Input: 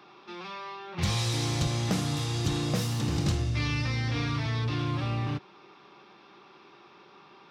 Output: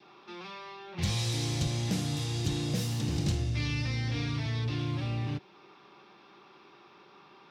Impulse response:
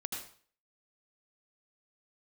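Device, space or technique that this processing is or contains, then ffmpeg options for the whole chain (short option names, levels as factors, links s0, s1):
one-band saturation: -filter_complex "[0:a]adynamicequalizer=threshold=0.002:dfrequency=1200:dqfactor=2.1:tfrequency=1200:tqfactor=2.1:attack=5:release=100:ratio=0.375:range=3:mode=cutabove:tftype=bell,acrossover=split=380|2200[s0][s1][s2];[s1]asoftclip=type=tanh:threshold=0.0126[s3];[s0][s3][s2]amix=inputs=3:normalize=0,volume=0.794"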